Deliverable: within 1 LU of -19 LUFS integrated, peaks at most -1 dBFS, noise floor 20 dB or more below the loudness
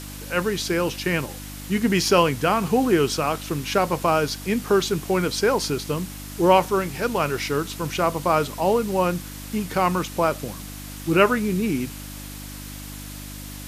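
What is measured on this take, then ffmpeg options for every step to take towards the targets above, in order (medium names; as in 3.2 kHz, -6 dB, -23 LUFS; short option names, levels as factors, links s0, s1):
hum 50 Hz; highest harmonic 300 Hz; hum level -35 dBFS; noise floor -36 dBFS; noise floor target -43 dBFS; loudness -22.5 LUFS; peak level -3.5 dBFS; loudness target -19.0 LUFS
-> -af "bandreject=f=50:t=h:w=4,bandreject=f=100:t=h:w=4,bandreject=f=150:t=h:w=4,bandreject=f=200:t=h:w=4,bandreject=f=250:t=h:w=4,bandreject=f=300:t=h:w=4"
-af "afftdn=nr=7:nf=-36"
-af "volume=1.5,alimiter=limit=0.891:level=0:latency=1"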